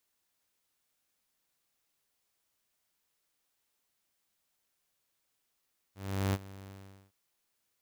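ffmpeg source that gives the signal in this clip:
ffmpeg -f lavfi -i "aevalsrc='0.0631*(2*mod(97.3*t,1)-1)':duration=1.168:sample_rate=44100,afade=type=in:duration=0.383,afade=type=out:start_time=0.383:duration=0.042:silence=0.106,afade=type=out:start_time=0.74:duration=0.428" out.wav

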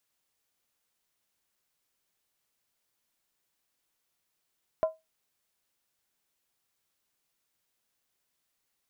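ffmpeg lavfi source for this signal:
ffmpeg -f lavfi -i "aevalsrc='0.119*pow(10,-3*t/0.2)*sin(2*PI*639*t)+0.0299*pow(10,-3*t/0.158)*sin(2*PI*1018.6*t)+0.0075*pow(10,-3*t/0.137)*sin(2*PI*1364.9*t)+0.00188*pow(10,-3*t/0.132)*sin(2*PI*1467.1*t)+0.000473*pow(10,-3*t/0.123)*sin(2*PI*1695.3*t)':duration=0.63:sample_rate=44100" out.wav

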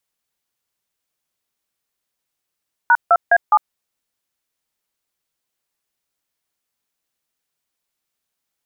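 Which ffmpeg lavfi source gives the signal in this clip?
ffmpeg -f lavfi -i "aevalsrc='0.282*clip(min(mod(t,0.207),0.052-mod(t,0.207))/0.002,0,1)*(eq(floor(t/0.207),0)*(sin(2*PI*941*mod(t,0.207))+sin(2*PI*1477*mod(t,0.207)))+eq(floor(t/0.207),1)*(sin(2*PI*697*mod(t,0.207))+sin(2*PI*1336*mod(t,0.207)))+eq(floor(t/0.207),2)*(sin(2*PI*697*mod(t,0.207))+sin(2*PI*1633*mod(t,0.207)))+eq(floor(t/0.207),3)*(sin(2*PI*852*mod(t,0.207))+sin(2*PI*1209*mod(t,0.207))))':duration=0.828:sample_rate=44100" out.wav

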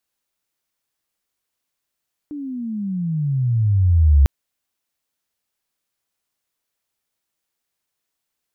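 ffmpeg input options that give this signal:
ffmpeg -f lavfi -i "aevalsrc='pow(10,(-8+19*(t/1.95-1))/20)*sin(2*PI*301*1.95/(-26*log(2)/12)*(exp(-26*log(2)/12*t/1.95)-1))':duration=1.95:sample_rate=44100" out.wav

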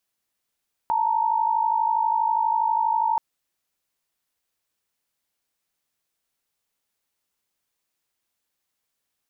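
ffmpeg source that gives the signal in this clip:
ffmpeg -f lavfi -i "aevalsrc='0.0794*(sin(2*PI*880*t)+sin(2*PI*932.33*t))':duration=2.28:sample_rate=44100" out.wav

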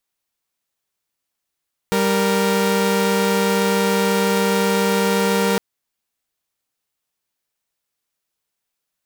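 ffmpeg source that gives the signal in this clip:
ffmpeg -f lavfi -i "aevalsrc='0.158*((2*mod(196*t,1)-1)+(2*mod(466.16*t,1)-1))':duration=3.66:sample_rate=44100" out.wav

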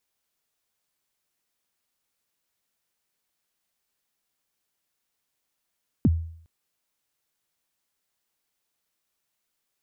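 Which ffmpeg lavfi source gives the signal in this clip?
ffmpeg -f lavfi -i "aevalsrc='0.224*pow(10,-3*t/0.6)*sin(2*PI*(310*0.036/log(82/310)*(exp(log(82/310)*min(t,0.036)/0.036)-1)+82*max(t-0.036,0)))':duration=0.41:sample_rate=44100" out.wav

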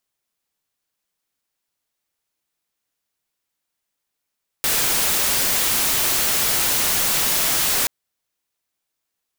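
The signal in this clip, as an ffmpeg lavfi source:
ffmpeg -f lavfi -i "anoisesrc=color=white:amplitude=0.183:duration=3.23:sample_rate=44100:seed=1" out.wav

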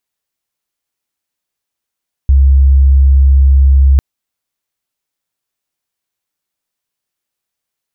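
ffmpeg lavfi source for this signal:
ffmpeg -f lavfi -i "aevalsrc='0.668*sin(2*PI*67.8*t)':duration=1.7:sample_rate=44100" out.wav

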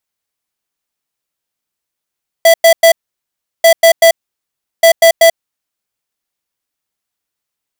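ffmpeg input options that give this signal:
ffmpeg -f lavfi -i "aevalsrc='0.562*(2*lt(mod(663*t,1),0.5)-1)*clip(min(mod(mod(t,1.19),0.19),0.09-mod(mod(t,1.19),0.19))/0.005,0,1)*lt(mod(t,1.19),0.57)':duration=3.57:sample_rate=44100" out.wav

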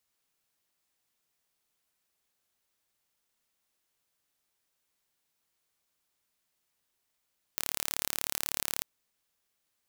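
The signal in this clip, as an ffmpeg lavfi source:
ffmpeg -f lavfi -i "aevalsrc='0.631*eq(mod(n,1215),0)':duration=1.24:sample_rate=44100" out.wav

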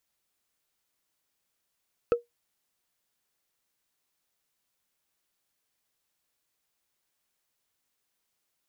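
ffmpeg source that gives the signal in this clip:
ffmpeg -f lavfi -i "aevalsrc='0.178*pow(10,-3*t/0.15)*sin(2*PI*475*t)+0.0596*pow(10,-3*t/0.044)*sin(2*PI*1309.6*t)+0.02*pow(10,-3*t/0.02)*sin(2*PI*2566.9*t)+0.00668*pow(10,-3*t/0.011)*sin(2*PI*4243.2*t)+0.00224*pow(10,-3*t/0.007)*sin(2*PI*6336.5*t)':duration=0.45:sample_rate=44100" out.wav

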